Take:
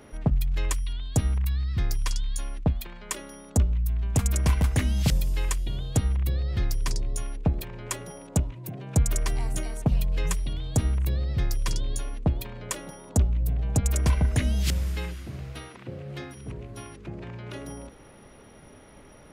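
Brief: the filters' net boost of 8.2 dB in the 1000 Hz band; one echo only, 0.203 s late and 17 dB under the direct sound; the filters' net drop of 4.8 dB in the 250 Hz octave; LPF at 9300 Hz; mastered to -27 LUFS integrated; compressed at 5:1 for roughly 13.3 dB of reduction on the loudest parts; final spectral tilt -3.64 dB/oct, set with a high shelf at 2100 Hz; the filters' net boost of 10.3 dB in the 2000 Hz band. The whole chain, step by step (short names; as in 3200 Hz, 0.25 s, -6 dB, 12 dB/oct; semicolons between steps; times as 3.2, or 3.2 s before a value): LPF 9300 Hz; bell 250 Hz -8 dB; bell 1000 Hz +7.5 dB; bell 2000 Hz +8 dB; high shelf 2100 Hz +4.5 dB; compressor 5:1, threshold -33 dBFS; echo 0.203 s -17 dB; gain +10.5 dB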